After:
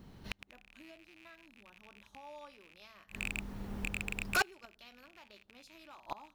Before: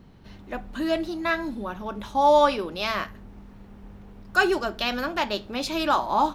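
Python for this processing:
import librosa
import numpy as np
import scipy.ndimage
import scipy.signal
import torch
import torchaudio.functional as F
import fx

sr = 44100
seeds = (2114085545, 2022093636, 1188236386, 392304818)

y = fx.rattle_buzz(x, sr, strikes_db=-40.0, level_db=-17.0)
y = fx.recorder_agc(y, sr, target_db=-11.5, rise_db_per_s=10.0, max_gain_db=30)
y = fx.high_shelf(y, sr, hz=5200.0, db=8.5)
y = fx.overload_stage(y, sr, gain_db=21.0, at=(3.02, 4.41), fade=0.02)
y = fx.gate_flip(y, sr, shuts_db=-14.0, range_db=-29)
y = y * librosa.db_to_amplitude(-4.5)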